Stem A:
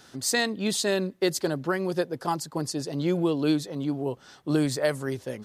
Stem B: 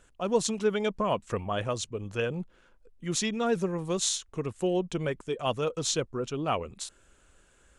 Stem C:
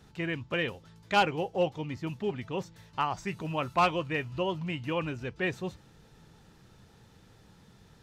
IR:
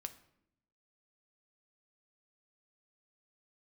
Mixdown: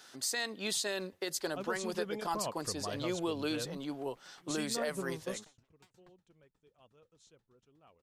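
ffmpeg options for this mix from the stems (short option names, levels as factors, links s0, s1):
-filter_complex "[0:a]highpass=f=850:p=1,volume=0.841,asplit=2[s0][s1];[1:a]adelay=1350,volume=0.316[s2];[2:a]alimiter=level_in=1.12:limit=0.0631:level=0:latency=1,volume=0.891,aeval=exprs='0.0158*(abs(mod(val(0)/0.0158+3,4)-2)-1)':c=same,aeval=exprs='val(0)*pow(10,-34*if(lt(mod(8.3*n/s,1),2*abs(8.3)/1000),1-mod(8.3*n/s,1)/(2*abs(8.3)/1000),(mod(8.3*n/s,1)-2*abs(8.3)/1000)/(1-2*abs(8.3)/1000))/20)':c=same,adelay=400,volume=0.15[s3];[s1]apad=whole_len=402754[s4];[s2][s4]sidechaingate=range=0.0562:threshold=0.00708:ratio=16:detection=peak[s5];[s0][s5][s3]amix=inputs=3:normalize=0,alimiter=limit=0.0631:level=0:latency=1:release=92"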